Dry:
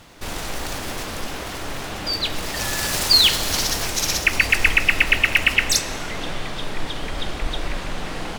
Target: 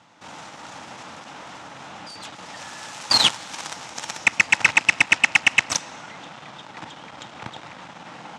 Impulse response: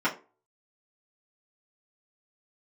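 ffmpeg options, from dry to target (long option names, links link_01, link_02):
-af "aeval=exprs='0.75*(cos(1*acos(clip(val(0)/0.75,-1,1)))-cos(1*PI/2))+0.15*(cos(7*acos(clip(val(0)/0.75,-1,1)))-cos(7*PI/2))':channel_layout=same,highpass=frequency=120:width=0.5412,highpass=frequency=120:width=1.3066,equalizer=frequency=400:width_type=q:width=4:gain=-8,equalizer=frequency=870:width_type=q:width=4:gain=8,equalizer=frequency=1300:width_type=q:width=4:gain=4,equalizer=frequency=4500:width_type=q:width=4:gain=-4,lowpass=frequency=7500:width=0.5412,lowpass=frequency=7500:width=1.3066"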